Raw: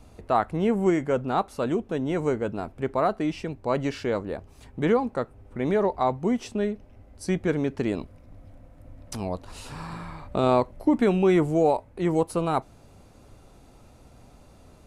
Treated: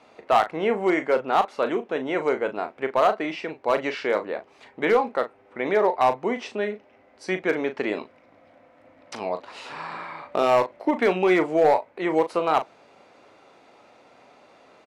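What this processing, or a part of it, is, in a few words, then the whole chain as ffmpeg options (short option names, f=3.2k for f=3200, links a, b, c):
megaphone: -filter_complex "[0:a]highpass=460,lowpass=3.8k,equalizer=f=2.1k:t=o:w=0.45:g=4.5,asoftclip=type=hard:threshold=-17.5dB,asplit=2[a][b];[b]adelay=38,volume=-10dB[c];[a][c]amix=inputs=2:normalize=0,volume=5.5dB"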